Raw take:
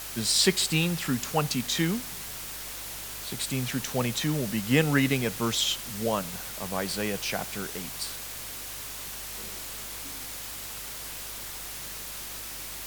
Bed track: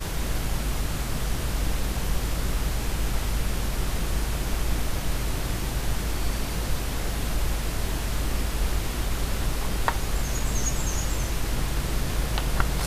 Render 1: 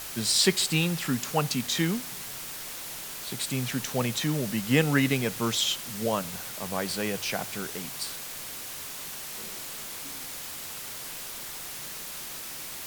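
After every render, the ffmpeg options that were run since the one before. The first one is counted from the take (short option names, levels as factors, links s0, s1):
-af "bandreject=f=50:t=h:w=4,bandreject=f=100:t=h:w=4"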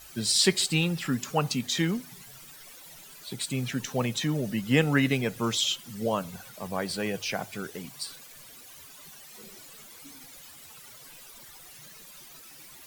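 -af "afftdn=nr=14:nf=-39"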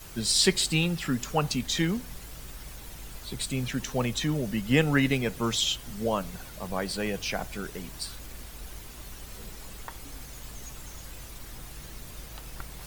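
-filter_complex "[1:a]volume=0.133[s0];[0:a][s0]amix=inputs=2:normalize=0"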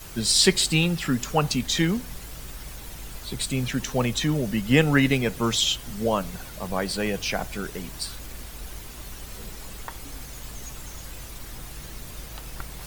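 -af "volume=1.58"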